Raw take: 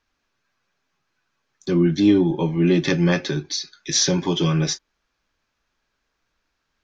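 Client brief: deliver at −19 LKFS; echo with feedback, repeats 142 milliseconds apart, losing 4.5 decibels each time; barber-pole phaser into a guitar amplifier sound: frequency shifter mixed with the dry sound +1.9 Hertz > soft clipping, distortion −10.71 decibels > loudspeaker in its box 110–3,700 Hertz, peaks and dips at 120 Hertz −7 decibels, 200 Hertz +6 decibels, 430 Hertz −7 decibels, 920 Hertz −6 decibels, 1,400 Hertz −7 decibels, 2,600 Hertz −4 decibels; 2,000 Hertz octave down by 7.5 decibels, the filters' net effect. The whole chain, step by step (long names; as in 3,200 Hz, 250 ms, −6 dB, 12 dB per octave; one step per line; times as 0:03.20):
parametric band 2,000 Hz −5.5 dB
repeating echo 142 ms, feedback 60%, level −4.5 dB
frequency shifter mixed with the dry sound +1.9 Hz
soft clipping −19 dBFS
loudspeaker in its box 110–3,700 Hz, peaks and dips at 120 Hz −7 dB, 200 Hz +6 dB, 430 Hz −7 dB, 920 Hz −6 dB, 1,400 Hz −7 dB, 2,600 Hz −4 dB
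level +7.5 dB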